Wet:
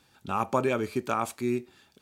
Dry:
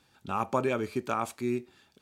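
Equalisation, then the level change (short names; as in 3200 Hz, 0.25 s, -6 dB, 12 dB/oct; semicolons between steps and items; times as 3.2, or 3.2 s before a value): high shelf 9200 Hz +4 dB; +2.0 dB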